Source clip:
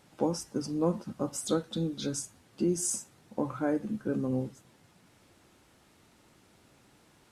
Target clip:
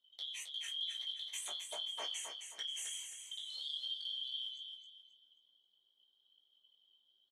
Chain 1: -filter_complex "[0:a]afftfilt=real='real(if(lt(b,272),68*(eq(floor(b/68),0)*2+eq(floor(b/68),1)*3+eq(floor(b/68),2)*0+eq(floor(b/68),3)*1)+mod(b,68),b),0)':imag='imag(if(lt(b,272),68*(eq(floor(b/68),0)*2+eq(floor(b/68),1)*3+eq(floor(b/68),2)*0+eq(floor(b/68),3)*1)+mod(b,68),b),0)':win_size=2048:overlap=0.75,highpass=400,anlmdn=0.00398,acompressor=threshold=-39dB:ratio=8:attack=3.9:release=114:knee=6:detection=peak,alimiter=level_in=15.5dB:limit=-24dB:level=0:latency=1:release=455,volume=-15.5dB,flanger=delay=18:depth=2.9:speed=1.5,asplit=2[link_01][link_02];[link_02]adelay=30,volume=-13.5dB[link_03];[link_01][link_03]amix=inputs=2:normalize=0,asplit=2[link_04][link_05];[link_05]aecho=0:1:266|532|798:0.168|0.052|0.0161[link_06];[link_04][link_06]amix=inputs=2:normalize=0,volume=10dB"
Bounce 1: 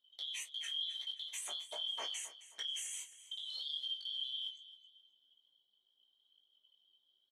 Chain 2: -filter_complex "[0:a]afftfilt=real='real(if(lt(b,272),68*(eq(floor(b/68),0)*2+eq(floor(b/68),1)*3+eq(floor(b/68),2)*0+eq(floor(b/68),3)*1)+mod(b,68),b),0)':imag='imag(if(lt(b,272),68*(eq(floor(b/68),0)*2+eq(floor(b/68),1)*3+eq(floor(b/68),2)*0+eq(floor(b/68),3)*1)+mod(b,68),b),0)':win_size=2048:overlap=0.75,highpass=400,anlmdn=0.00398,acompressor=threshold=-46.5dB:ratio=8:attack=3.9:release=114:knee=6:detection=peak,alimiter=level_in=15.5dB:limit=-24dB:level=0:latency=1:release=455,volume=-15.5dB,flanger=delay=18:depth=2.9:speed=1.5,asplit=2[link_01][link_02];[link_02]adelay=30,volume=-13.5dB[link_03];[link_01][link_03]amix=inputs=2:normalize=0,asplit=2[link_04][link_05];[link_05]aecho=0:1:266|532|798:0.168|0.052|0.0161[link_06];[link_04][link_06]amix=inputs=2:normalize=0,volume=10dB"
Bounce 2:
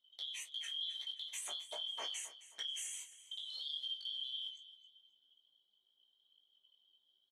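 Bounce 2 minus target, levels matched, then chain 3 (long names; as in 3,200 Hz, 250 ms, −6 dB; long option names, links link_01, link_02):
echo-to-direct −9.5 dB
-filter_complex "[0:a]afftfilt=real='real(if(lt(b,272),68*(eq(floor(b/68),0)*2+eq(floor(b/68),1)*3+eq(floor(b/68),2)*0+eq(floor(b/68),3)*1)+mod(b,68),b),0)':imag='imag(if(lt(b,272),68*(eq(floor(b/68),0)*2+eq(floor(b/68),1)*3+eq(floor(b/68),2)*0+eq(floor(b/68),3)*1)+mod(b,68),b),0)':win_size=2048:overlap=0.75,highpass=400,anlmdn=0.00398,acompressor=threshold=-46.5dB:ratio=8:attack=3.9:release=114:knee=6:detection=peak,alimiter=level_in=15.5dB:limit=-24dB:level=0:latency=1:release=455,volume=-15.5dB,flanger=delay=18:depth=2.9:speed=1.5,asplit=2[link_01][link_02];[link_02]adelay=30,volume=-13.5dB[link_03];[link_01][link_03]amix=inputs=2:normalize=0,asplit=2[link_04][link_05];[link_05]aecho=0:1:266|532|798|1064:0.501|0.155|0.0482|0.0149[link_06];[link_04][link_06]amix=inputs=2:normalize=0,volume=10dB"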